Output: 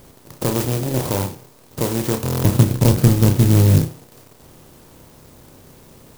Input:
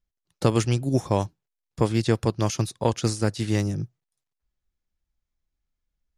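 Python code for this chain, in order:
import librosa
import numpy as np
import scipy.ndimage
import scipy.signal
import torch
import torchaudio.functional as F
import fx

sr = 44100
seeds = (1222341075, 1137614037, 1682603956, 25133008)

p1 = fx.bin_compress(x, sr, power=0.4)
p2 = 10.0 ** (-15.0 / 20.0) * np.tanh(p1 / 10.0 ** (-15.0 / 20.0))
p3 = p1 + (p2 * librosa.db_to_amplitude(-4.0))
p4 = fx.bass_treble(p3, sr, bass_db=14, treble_db=-15, at=(2.27, 3.79))
p5 = p4 + fx.room_flutter(p4, sr, wall_m=5.4, rt60_s=0.29, dry=0)
p6 = fx.buffer_glitch(p5, sr, at_s=(2.24,), block=1024, repeats=8)
p7 = fx.clock_jitter(p6, sr, seeds[0], jitter_ms=0.13)
y = p7 * librosa.db_to_amplitude(-5.5)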